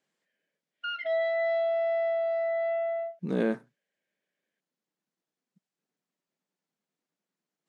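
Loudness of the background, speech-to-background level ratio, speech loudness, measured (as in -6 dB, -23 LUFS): -29.0 LUFS, -2.5 dB, -31.5 LUFS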